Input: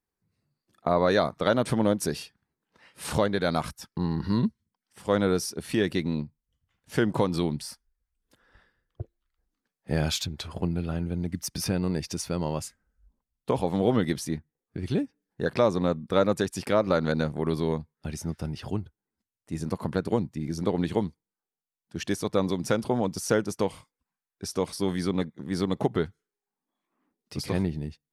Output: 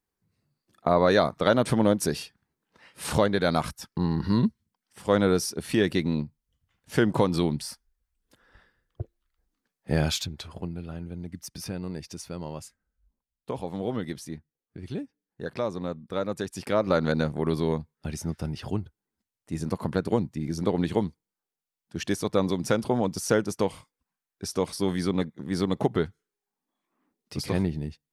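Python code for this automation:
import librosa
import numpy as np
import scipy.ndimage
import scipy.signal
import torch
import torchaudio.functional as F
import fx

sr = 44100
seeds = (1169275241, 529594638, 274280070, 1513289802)

y = fx.gain(x, sr, db=fx.line((10.0, 2.0), (10.73, -7.0), (16.25, -7.0), (16.96, 1.0)))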